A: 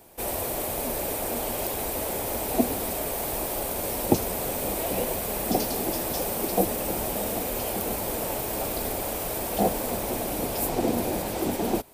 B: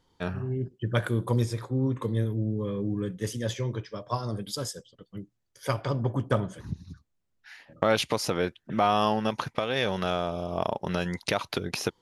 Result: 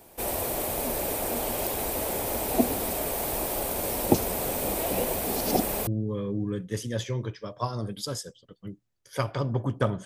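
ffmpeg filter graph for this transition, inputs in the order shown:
ffmpeg -i cue0.wav -i cue1.wav -filter_complex "[0:a]apad=whole_dur=10.05,atrim=end=10.05,asplit=2[link_01][link_02];[link_01]atrim=end=5.242[link_03];[link_02]atrim=start=5.238:end=5.872,asetpts=PTS-STARTPTS,areverse[link_04];[1:a]atrim=start=2.368:end=6.55[link_05];[link_03][link_04]acrossfade=duration=0.004:curve1=hsin:curve2=hsin[link_06];[link_06][link_05]acrossfade=duration=0.004:curve1=hsin:curve2=hsin" out.wav

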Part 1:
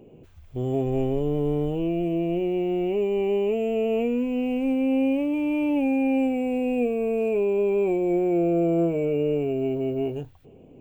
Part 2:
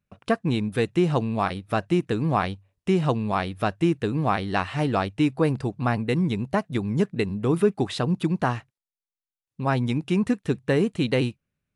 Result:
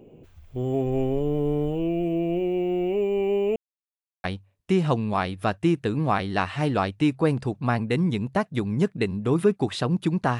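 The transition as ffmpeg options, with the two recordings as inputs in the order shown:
ffmpeg -i cue0.wav -i cue1.wav -filter_complex "[0:a]apad=whole_dur=10.39,atrim=end=10.39,asplit=2[link_01][link_02];[link_01]atrim=end=3.56,asetpts=PTS-STARTPTS,afade=type=out:start_time=3.556:duration=0.004:curve=hsin[link_03];[link_02]atrim=start=3.56:end=4.24,asetpts=PTS-STARTPTS,volume=0[link_04];[1:a]atrim=start=2.42:end=8.57,asetpts=PTS-STARTPTS,afade=type=in:duration=0.004:curve=hsin[link_05];[link_03][link_04][link_05]concat=n=3:v=0:a=1" out.wav

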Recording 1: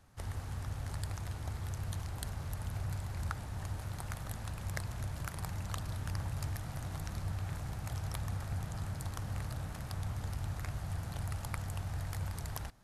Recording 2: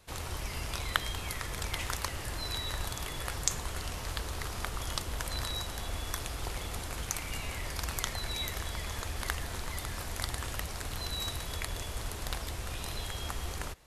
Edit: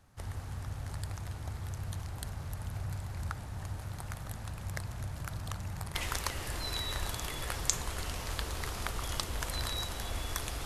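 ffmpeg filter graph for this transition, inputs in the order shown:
ffmpeg -i cue0.wav -i cue1.wav -filter_complex "[0:a]apad=whole_dur=10.65,atrim=end=10.65,asplit=2[link_01][link_02];[link_01]atrim=end=5.312[link_03];[link_02]atrim=start=5.308:end=5.952,asetpts=PTS-STARTPTS,areverse[link_04];[1:a]atrim=start=1.728:end=6.43[link_05];[link_03][link_04]acrossfade=duration=0.004:curve1=hsin:curve2=hsin[link_06];[link_06][link_05]acrossfade=duration=0.004:curve1=hsin:curve2=hsin" out.wav

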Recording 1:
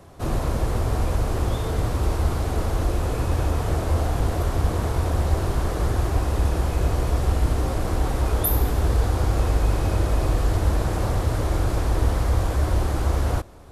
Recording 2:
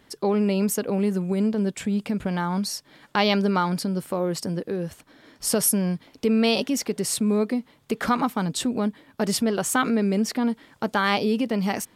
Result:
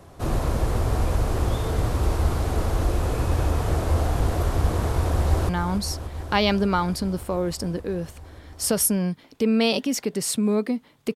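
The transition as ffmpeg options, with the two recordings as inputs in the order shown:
ffmpeg -i cue0.wav -i cue1.wav -filter_complex "[0:a]apad=whole_dur=11.15,atrim=end=11.15,atrim=end=5.492[link_01];[1:a]atrim=start=2.318:end=7.98[link_02];[link_01][link_02]acrossfade=duration=0.004:curve1=hsin:curve2=hsin,asplit=2[link_03][link_04];[link_04]afade=type=in:start_time=4.98:duration=0.01,afade=type=out:start_time=5.49:duration=0.01,aecho=0:1:290|580|870|1160|1450|1740|2030|2320|2610|2900|3190|3480:0.266073|0.226162|0.192237|0.163402|0.138892|0.118058|0.100349|0.0852967|0.0725022|0.0616269|0.0523829|0.0445254[link_05];[link_03][link_05]amix=inputs=2:normalize=0" out.wav

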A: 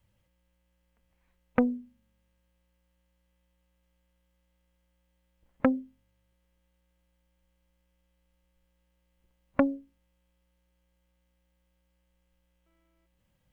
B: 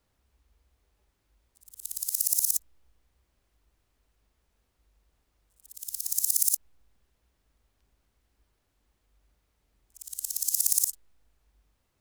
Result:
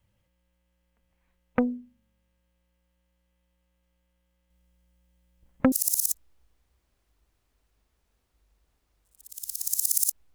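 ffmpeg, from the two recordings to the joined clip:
ffmpeg -i cue0.wav -i cue1.wav -filter_complex "[0:a]asettb=1/sr,asplit=3[link_01][link_02][link_03];[link_01]atrim=end=4.504[link_04];[link_02]atrim=start=4.5:end=5.72,asetpts=PTS-STARTPTS,afade=type=in:duration=0.004:curve=qsin,afade=type=out:start_time=1.216:duration=0.004:curve=qsin,bass=frequency=250:gain=7,treble=frequency=4000:gain=5[link_05];[link_03]atrim=start=5.716[link_06];[link_04][link_05]acrossfade=duration=0.004:curve1=hsin:curve2=qsin[link_07];[link_07][link_06]acrossfade=duration=0.004:curve1=qsin:curve2=hsin,apad=whole_dur=10.34,atrim=end=10.34,atrim=end=5.722[link_08];[1:a]atrim=start=2.168:end=6.79[link_09];[link_08][link_09]acrossfade=duration=0.004:curve1=hsin:curve2=hsin" out.wav

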